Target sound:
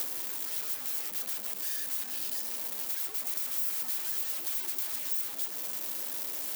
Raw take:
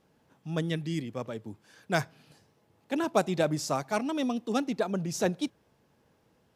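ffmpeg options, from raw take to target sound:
ffmpeg -i in.wav -filter_complex "[0:a]aeval=exprs='val(0)+0.5*0.0188*sgn(val(0))':channel_layout=same,alimiter=limit=-20dB:level=0:latency=1:release=102,aeval=exprs='(mod(63.1*val(0)+1,2)-1)/63.1':channel_layout=same,aemphasis=mode=production:type=riaa,acrossover=split=310|2400[link_01][link_02][link_03];[link_01]acompressor=threshold=-60dB:ratio=4[link_04];[link_02]acompressor=threshold=-55dB:ratio=4[link_05];[link_03]acompressor=threshold=-34dB:ratio=4[link_06];[link_04][link_05][link_06]amix=inputs=3:normalize=0,afreqshift=100,asettb=1/sr,asplit=3[link_07][link_08][link_09];[link_07]atrim=end=3.034[link_10];[link_08]atrim=start=3.03:end=5.04,asetpts=PTS-STARTPTS,afade=type=in:duration=0.004:curve=qsin,afade=type=out:start_time=2.006:duration=0.004:curve=qsin,asplit=6[link_11][link_12][link_13][link_14][link_15][link_16];[link_12]adelay=210,afreqshift=-57,volume=-9.5dB[link_17];[link_13]adelay=420,afreqshift=-114,volume=-16.6dB[link_18];[link_14]adelay=630,afreqshift=-171,volume=-23.8dB[link_19];[link_15]adelay=840,afreqshift=-228,volume=-30.9dB[link_20];[link_16]adelay=1050,afreqshift=-285,volume=-38dB[link_21];[link_11][link_17][link_18][link_19][link_20][link_21]amix=inputs=6:normalize=0,atrim=end_sample=88641[link_22];[link_09]atrim=start=5.036[link_23];[link_10][link_22]acrossfade=duration=0.004:curve1=hsin:curve2=qsin[link_24];[link_24][link_23]acrossfade=duration=0.004:curve1=qsin:curve2=hsin,volume=2.5dB" out.wav

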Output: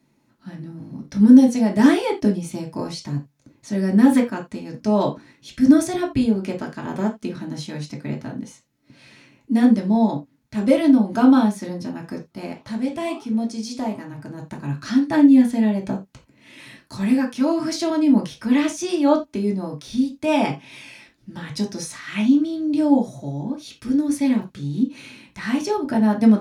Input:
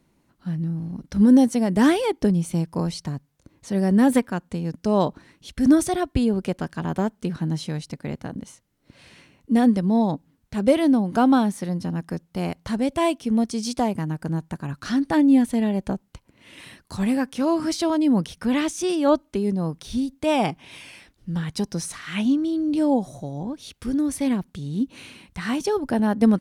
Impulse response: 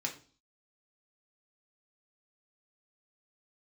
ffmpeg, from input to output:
-filter_complex "[0:a]asplit=3[link_01][link_02][link_03];[link_01]afade=type=out:start_time=12.3:duration=0.02[link_04];[link_02]flanger=delay=8.1:depth=7.4:regen=-86:speed=1.5:shape=triangular,afade=type=in:start_time=12.3:duration=0.02,afade=type=out:start_time=14.37:duration=0.02[link_05];[link_03]afade=type=in:start_time=14.37:duration=0.02[link_06];[link_04][link_05][link_06]amix=inputs=3:normalize=0[link_07];[1:a]atrim=start_sample=2205,afade=type=out:start_time=0.14:duration=0.01,atrim=end_sample=6615[link_08];[link_07][link_08]afir=irnorm=-1:irlink=0,volume=-1dB"

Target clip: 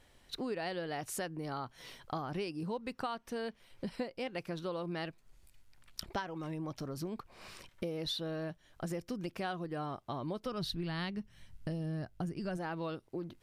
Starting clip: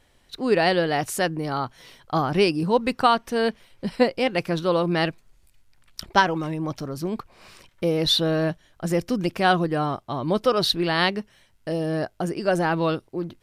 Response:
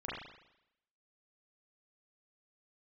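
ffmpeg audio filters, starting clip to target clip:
-filter_complex "[0:a]asplit=3[link_01][link_02][link_03];[link_01]afade=type=out:start_time=10.45:duration=0.02[link_04];[link_02]asubboost=boost=5:cutoff=200,afade=type=in:start_time=10.45:duration=0.02,afade=type=out:start_time=12.56:duration=0.02[link_05];[link_03]afade=type=in:start_time=12.56:duration=0.02[link_06];[link_04][link_05][link_06]amix=inputs=3:normalize=0,acompressor=threshold=-34dB:ratio=5,volume=-3dB"

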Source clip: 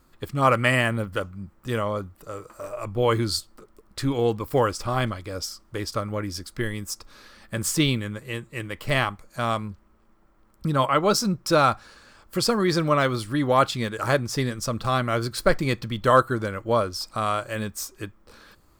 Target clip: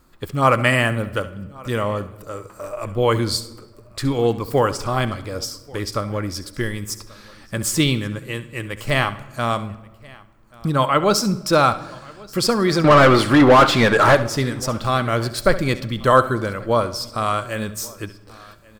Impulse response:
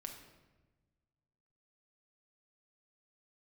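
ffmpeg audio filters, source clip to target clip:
-filter_complex "[0:a]asettb=1/sr,asplit=3[link_01][link_02][link_03];[link_01]atrim=end=12.844[link_04];[link_02]atrim=start=12.84:end=14.15,asetpts=PTS-STARTPTS,afade=type=in:duration=0.004:curve=qsin,afade=type=out:start_time=1.306:duration=0.004:curve=qsin,asplit=2[link_05][link_06];[link_06]highpass=frequency=720:poles=1,volume=28dB,asoftclip=type=tanh:threshold=-6dB[link_07];[link_05][link_07]amix=inputs=2:normalize=0,lowpass=frequency=1400:poles=1,volume=-6dB[link_08];[link_03]atrim=start=14.146[link_09];[link_04][link_08]acrossfade=duration=0.004:curve1=hsin:curve2=qsin[link_10];[link_10][link_09]acrossfade=duration=0.004:curve1=qsin:curve2=hsin,aecho=1:1:1134:0.0631,asplit=2[link_11][link_12];[1:a]atrim=start_sample=2205,adelay=68[link_13];[link_12][link_13]afir=irnorm=-1:irlink=0,volume=-10dB[link_14];[link_11][link_14]amix=inputs=2:normalize=0,volume=3.5dB"

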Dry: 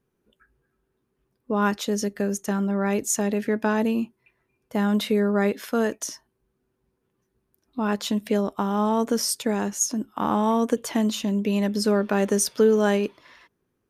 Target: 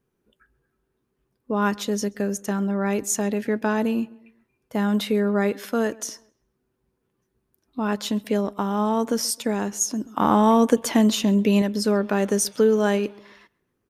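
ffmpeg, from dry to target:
ffmpeg -i in.wav -filter_complex "[0:a]asplit=2[link_01][link_02];[link_02]adelay=132,lowpass=frequency=2900:poles=1,volume=-23dB,asplit=2[link_03][link_04];[link_04]adelay=132,lowpass=frequency=2900:poles=1,volume=0.43,asplit=2[link_05][link_06];[link_06]adelay=132,lowpass=frequency=2900:poles=1,volume=0.43[link_07];[link_01][link_03][link_05][link_07]amix=inputs=4:normalize=0,asettb=1/sr,asplit=3[link_08][link_09][link_10];[link_08]atrim=end=10.054[link_11];[link_09]atrim=start=10.05:end=11.62,asetpts=PTS-STARTPTS,afade=type=in:duration=0.004:curve=qsin,afade=type=out:start_time=1.566:duration=0.004:curve=qsin,acontrast=30[link_12];[link_10]atrim=start=11.616[link_13];[link_11][link_12]acrossfade=duration=0.004:curve1=hsin:curve2=qsin[link_14];[link_14][link_13]acrossfade=duration=0.004:curve1=qsin:curve2=hsin" out.wav

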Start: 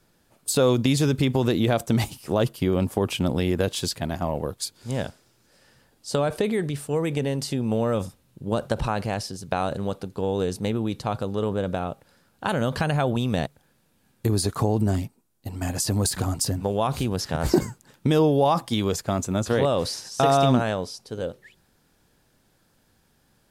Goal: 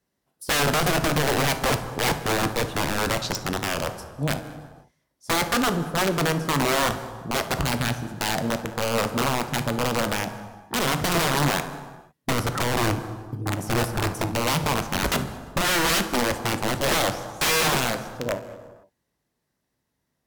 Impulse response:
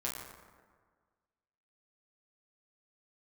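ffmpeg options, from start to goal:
-filter_complex "[0:a]highpass=43,afwtdn=0.0316,aeval=exprs='(mod(9.44*val(0)+1,2)-1)/9.44':channel_layout=same,asetrate=51156,aresample=44100,asplit=2[link_01][link_02];[1:a]atrim=start_sample=2205,afade=type=out:start_time=0.43:duration=0.01,atrim=end_sample=19404,asetrate=32634,aresample=44100[link_03];[link_02][link_03]afir=irnorm=-1:irlink=0,volume=-8.5dB[link_04];[link_01][link_04]amix=inputs=2:normalize=0"

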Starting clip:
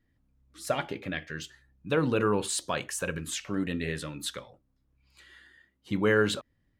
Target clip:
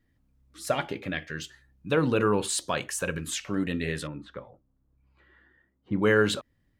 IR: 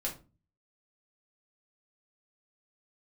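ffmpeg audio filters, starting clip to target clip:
-filter_complex "[0:a]asettb=1/sr,asplit=3[link_01][link_02][link_03];[link_01]atrim=end=4.074[link_04];[link_02]atrim=start=4.07:end=6.02,asetpts=PTS-STARTPTS,afade=type=in:duration=0.004:curve=qsin,afade=type=out:start_time=1.946:duration=0.004:curve=qsin,lowpass=1200[link_05];[link_03]atrim=start=6.016[link_06];[link_04][link_05]acrossfade=duration=0.004:curve1=hsin:curve2=qsin[link_07];[link_07][link_06]acrossfade=duration=0.004:curve1=qsin:curve2=hsin,volume=2dB"

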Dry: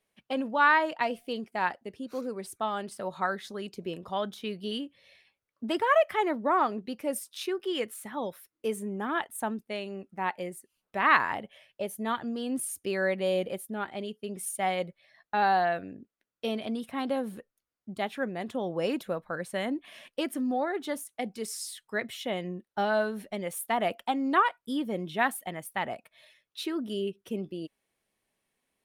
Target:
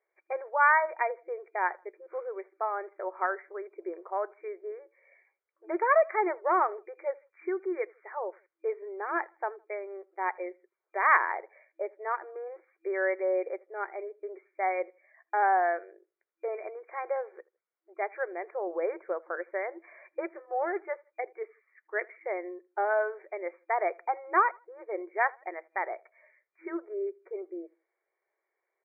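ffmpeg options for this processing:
ffmpeg -i in.wav -filter_complex "[0:a]afftfilt=real='re*between(b*sr/4096,330,2400)':imag='im*between(b*sr/4096,330,2400)':win_size=4096:overlap=0.75,aeval=exprs='0.398*(cos(1*acos(clip(val(0)/0.398,-1,1)))-cos(1*PI/2))+0.00224*(cos(2*acos(clip(val(0)/0.398,-1,1)))-cos(2*PI/2))':channel_layout=same,asplit=2[link_01][link_02];[link_02]adelay=80,lowpass=frequency=1900:poles=1,volume=-24dB,asplit=2[link_03][link_04];[link_04]adelay=80,lowpass=frequency=1900:poles=1,volume=0.32[link_05];[link_01][link_03][link_05]amix=inputs=3:normalize=0" out.wav

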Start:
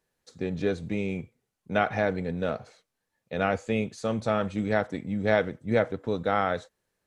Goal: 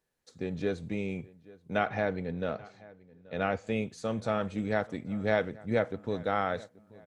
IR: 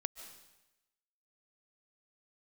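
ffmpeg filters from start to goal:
-filter_complex "[0:a]asettb=1/sr,asplit=3[link_01][link_02][link_03];[link_01]atrim=end=1.854[link_04];[link_02]atrim=start=1.85:end=3.67,asetpts=PTS-STARTPTS,afade=type=in:duration=0.004:curve=qsin,afade=type=out:start_time=1.816:duration=0.004:curve=qsin,lowpass=5300[link_05];[link_03]atrim=start=3.666[link_06];[link_04][link_05]acrossfade=duration=0.004:curve1=hsin:curve2=qsin[link_07];[link_07][link_06]acrossfade=duration=0.004:curve1=qsin:curve2=hsin,asplit=2[link_08][link_09];[link_09]adelay=831,lowpass=frequency=2900:poles=1,volume=-21.5dB,asplit=2[link_10][link_11];[link_11]adelay=831,lowpass=frequency=2900:poles=1,volume=0.4,asplit=2[link_12][link_13];[link_13]adelay=831,lowpass=frequency=2900:poles=1,volume=0.4[link_14];[link_10][link_12][link_14]amix=inputs=3:normalize=0[link_15];[link_08][link_15]amix=inputs=2:normalize=0,volume=-4dB"

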